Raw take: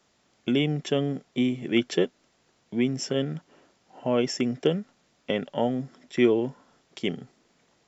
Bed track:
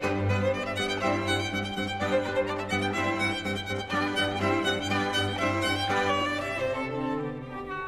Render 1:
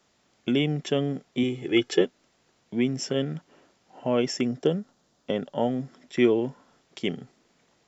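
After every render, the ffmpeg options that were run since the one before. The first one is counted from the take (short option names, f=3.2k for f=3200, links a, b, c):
-filter_complex "[0:a]asettb=1/sr,asplit=3[a][b][c];[a]atrim=end=1.434[d];[b]atrim=start=1.43:end=2.01,asetpts=PTS-STARTPTS,afade=t=in:d=0.004:c=qsin,afade=t=out:st=0.576:d=0.004:c=qsin,aecho=1:1:2.4:0.65,atrim=end_sample=25578[e];[c]atrim=start=2.006[f];[d][e]acrossfade=d=0.004:c1=hsin:c2=qsin[g];[g][f]acrossfade=d=0.004:c1=qsin:c2=hsin,asettb=1/sr,asplit=3[h][i][j];[h]atrim=end=4.474[k];[i]atrim=start=4.47:end=5.61,asetpts=PTS-STARTPTS,afade=t=in:d=0.004:c=qsin,afade=t=out:st=1.136:d=0.004:c=qsin,equalizer=f=2.3k:t=o:w=0.83:g=-8.5[l];[j]atrim=start=5.606[m];[k][l]acrossfade=d=0.004:c1=hsin:c2=qsin[n];[n][m]acrossfade=d=0.004:c1=qsin:c2=hsin"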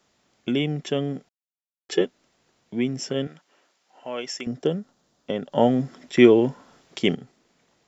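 -filter_complex "[0:a]asettb=1/sr,asplit=3[a][b][c];[a]atrim=end=3.274[d];[b]atrim=start=3.27:end=4.47,asetpts=PTS-STARTPTS,afade=t=in:d=0.004:c=qsin,afade=t=out:st=1.196:d=0.004:c=qsin,highpass=f=1.1k:p=1[e];[c]atrim=start=4.466[f];[d][e]acrossfade=d=0.004:c1=hsin:c2=qsin[g];[g][f]acrossfade=d=0.004:c1=qsin:c2=hsin,asplit=5[h][i][j][k][l];[h]atrim=end=1.29,asetpts=PTS-STARTPTS,afade=t=out:st=1.286:d=0.004:c=hsin[m];[i]atrim=start=1.29:end=1.89,asetpts=PTS-STARTPTS,volume=0[n];[j]atrim=start=1.89:end=5.522,asetpts=PTS-STARTPTS,afade=t=in:d=0.004:c=hsin[o];[k]atrim=start=5.518:end=7.152,asetpts=PTS-STARTPTS,volume=7dB[p];[l]atrim=start=7.148[q];[m][n][o]concat=n=3:v=0:a=1[r];[r][p]acrossfade=d=0.004:c1=hsin:c2=hsin[s];[s][q]acrossfade=d=0.004:c1=hsin:c2=hsin"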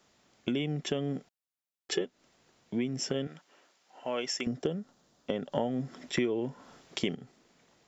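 -af "acompressor=threshold=-28dB:ratio=6"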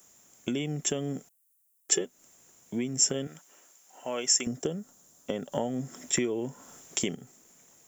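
-af "aexciter=amount=14.6:drive=3.8:freq=6.6k"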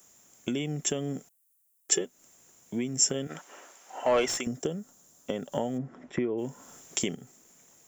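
-filter_complex "[0:a]asplit=3[a][b][c];[a]afade=t=out:st=3.29:d=0.02[d];[b]asplit=2[e][f];[f]highpass=f=720:p=1,volume=24dB,asoftclip=type=tanh:threshold=-11dB[g];[e][g]amix=inputs=2:normalize=0,lowpass=f=1.1k:p=1,volume=-6dB,afade=t=in:st=3.29:d=0.02,afade=t=out:st=4.39:d=0.02[h];[c]afade=t=in:st=4.39:d=0.02[i];[d][h][i]amix=inputs=3:normalize=0,asplit=3[j][k][l];[j]afade=t=out:st=5.77:d=0.02[m];[k]lowpass=1.6k,afade=t=in:st=5.77:d=0.02,afade=t=out:st=6.37:d=0.02[n];[l]afade=t=in:st=6.37:d=0.02[o];[m][n][o]amix=inputs=3:normalize=0"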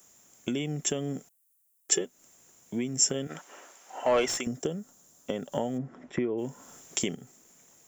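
-af anull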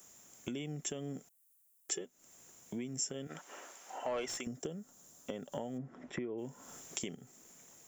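-af "acompressor=threshold=-45dB:ratio=2"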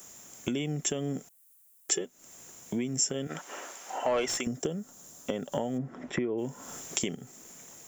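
-af "volume=9dB"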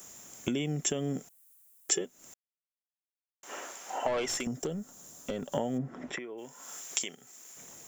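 -filter_complex "[0:a]asettb=1/sr,asplit=3[a][b][c];[a]atrim=end=4.074[d];[b]atrim=start=4.07:end=5.52,asetpts=PTS-STARTPTS,afade=t=in:d=0.004:c=qsin,afade=t=out:st=1.446:d=0.004:c=qsin,aeval=exprs='(tanh(20*val(0)+0.15)-tanh(0.15))/20':c=same[e];[c]atrim=start=5.516[f];[d][e]acrossfade=d=0.004:c1=hsin:c2=qsin[g];[g][f]acrossfade=d=0.004:c1=qsin:c2=hsin,asettb=1/sr,asplit=3[h][i][j];[h]atrim=end=6.154[k];[i]atrim=start=6.15:end=7.57,asetpts=PTS-STARTPTS,afade=t=in:d=0.004:c=qsin,afade=t=out:st=1.416:d=0.004:c=qsin,highpass=f=1.3k:p=1[l];[j]atrim=start=7.566[m];[k][l]acrossfade=d=0.004:c1=hsin:c2=qsin[n];[n][m]acrossfade=d=0.004:c1=qsin:c2=hsin,asplit=3[o][p][q];[o]atrim=end=2.34,asetpts=PTS-STARTPTS,afade=t=out:st=2.336:d=0.004:c=hsin[r];[p]atrim=start=2.34:end=3.43,asetpts=PTS-STARTPTS,volume=0[s];[q]atrim=start=3.43,asetpts=PTS-STARTPTS,afade=t=in:d=0.004:c=hsin[t];[r][s][t]concat=n=3:v=0:a=1"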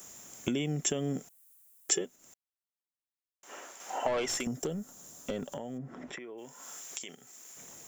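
-filter_complex "[0:a]asettb=1/sr,asplit=3[a][b][c];[a]atrim=end=4.374[d];[b]atrim=start=4.37:end=4.93,asetpts=PTS-STARTPTS,afade=t=in:d=0.004:c=qsin,afade=t=out:st=0.556:d=0.004:c=qsin,equalizer=f=12k:w=1.5:g=5.5[e];[c]atrim=start=4.926[f];[d][e]acrossfade=d=0.004:c1=hsin:c2=qsin[g];[g][f]acrossfade=d=0.004:c1=qsin:c2=hsin,asettb=1/sr,asplit=3[h][i][j];[h]atrim=end=5.504[k];[i]atrim=start=5.5:end=7.09,asetpts=PTS-STARTPTS,afade=t=in:d=0.004:c=qsin,afade=t=out:st=1.586:d=0.004:c=qsin,acompressor=threshold=-42dB:ratio=2:attack=3.2:release=140:knee=1:detection=peak[l];[j]atrim=start=7.086[m];[k][l]acrossfade=d=0.004:c1=hsin:c2=qsin[n];[n][m]acrossfade=d=0.004:c1=qsin:c2=hsin,asplit=3[o][p][q];[o]atrim=end=2.162[r];[p]atrim=start=2.158:end=3.802,asetpts=PTS-STARTPTS,volume=-5dB[s];[q]atrim=start=3.798[t];[r][s]acrossfade=d=0.004:c1=hsin:c2=hsin[u];[u][t]acrossfade=d=0.004:c1=hsin:c2=hsin"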